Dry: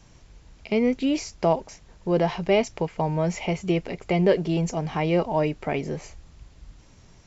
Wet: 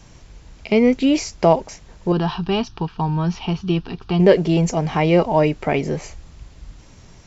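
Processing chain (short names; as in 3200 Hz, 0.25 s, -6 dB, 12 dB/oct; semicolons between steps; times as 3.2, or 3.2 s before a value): 2.12–4.2 fixed phaser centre 2100 Hz, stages 6; gain +7 dB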